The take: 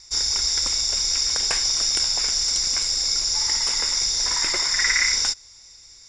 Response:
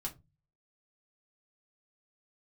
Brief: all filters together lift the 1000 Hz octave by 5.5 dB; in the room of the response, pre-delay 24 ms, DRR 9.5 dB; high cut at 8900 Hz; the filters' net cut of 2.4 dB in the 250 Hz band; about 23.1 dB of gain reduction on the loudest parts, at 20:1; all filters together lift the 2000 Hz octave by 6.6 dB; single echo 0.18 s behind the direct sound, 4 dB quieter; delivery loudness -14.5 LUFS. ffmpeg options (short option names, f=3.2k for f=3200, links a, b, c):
-filter_complex "[0:a]lowpass=8.9k,equalizer=f=250:t=o:g=-4,equalizer=f=1k:t=o:g=5,equalizer=f=2k:t=o:g=6,acompressor=threshold=-34dB:ratio=20,aecho=1:1:180:0.631,asplit=2[a][b];[1:a]atrim=start_sample=2205,adelay=24[c];[b][c]afir=irnorm=-1:irlink=0,volume=-9dB[d];[a][d]amix=inputs=2:normalize=0,volume=18.5dB"